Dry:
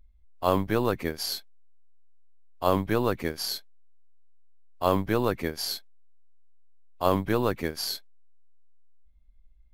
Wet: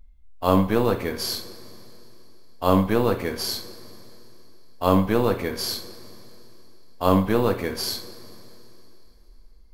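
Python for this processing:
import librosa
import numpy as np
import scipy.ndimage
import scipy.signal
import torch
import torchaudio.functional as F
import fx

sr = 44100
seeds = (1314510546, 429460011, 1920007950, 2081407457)

y = fx.hpss(x, sr, part='percussive', gain_db=-5)
y = fx.rev_double_slope(y, sr, seeds[0], early_s=0.4, late_s=3.3, knee_db=-18, drr_db=4.5)
y = y * 10.0 ** (5.5 / 20.0)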